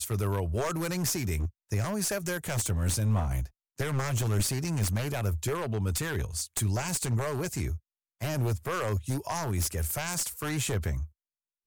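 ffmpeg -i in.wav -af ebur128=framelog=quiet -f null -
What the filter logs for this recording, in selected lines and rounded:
Integrated loudness:
  I:         -30.4 LUFS
  Threshold: -40.5 LUFS
Loudness range:
  LRA:         1.9 LU
  Threshold: -50.5 LUFS
  LRA low:   -31.5 LUFS
  LRA high:  -29.6 LUFS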